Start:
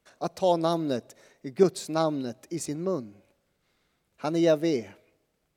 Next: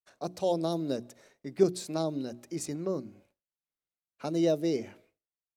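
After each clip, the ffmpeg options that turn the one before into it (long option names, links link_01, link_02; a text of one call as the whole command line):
ffmpeg -i in.wav -filter_complex "[0:a]bandreject=frequency=60:width_type=h:width=6,bandreject=frequency=120:width_type=h:width=6,bandreject=frequency=180:width_type=h:width=6,bandreject=frequency=240:width_type=h:width=6,bandreject=frequency=300:width_type=h:width=6,bandreject=frequency=360:width_type=h:width=6,agate=range=-33dB:threshold=-54dB:ratio=3:detection=peak,acrossover=split=680|3300[link_01][link_02][link_03];[link_02]acompressor=threshold=-41dB:ratio=6[link_04];[link_01][link_04][link_03]amix=inputs=3:normalize=0,volume=-2.5dB" out.wav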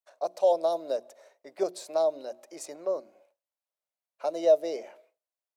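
ffmpeg -i in.wav -af "highpass=frequency=600:width_type=q:width=4.3,equalizer=frequency=980:width_type=o:width=0.34:gain=4,volume=-3dB" out.wav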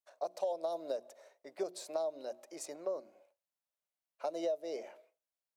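ffmpeg -i in.wav -af "acompressor=threshold=-29dB:ratio=6,volume=-3.5dB" out.wav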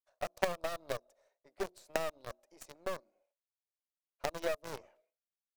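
ffmpeg -i in.wav -filter_complex "[0:a]aeval=exprs='0.0668*(cos(1*acos(clip(val(0)/0.0668,-1,1)))-cos(1*PI/2))+0.0133*(cos(3*acos(clip(val(0)/0.0668,-1,1)))-cos(3*PI/2))+0.00168*(cos(5*acos(clip(val(0)/0.0668,-1,1)))-cos(5*PI/2))+0.00422*(cos(8*acos(clip(val(0)/0.0668,-1,1)))-cos(8*PI/2))':channel_layout=same,asplit=2[link_01][link_02];[link_02]acrusher=bits=5:mix=0:aa=0.000001,volume=-5dB[link_03];[link_01][link_03]amix=inputs=2:normalize=0,aeval=exprs='0.112*(cos(1*acos(clip(val(0)/0.112,-1,1)))-cos(1*PI/2))+0.0316*(cos(3*acos(clip(val(0)/0.112,-1,1)))-cos(3*PI/2))':channel_layout=same,volume=8.5dB" out.wav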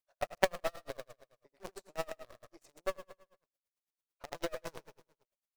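ffmpeg -i in.wav -filter_complex "[0:a]asplit=2[link_01][link_02];[link_02]aecho=0:1:79|158|237|316|395|474:0.224|0.13|0.0753|0.0437|0.0253|0.0147[link_03];[link_01][link_03]amix=inputs=2:normalize=0,aeval=exprs='val(0)*pow(10,-34*(0.5-0.5*cos(2*PI*9*n/s))/20)':channel_layout=same,volume=5.5dB" out.wav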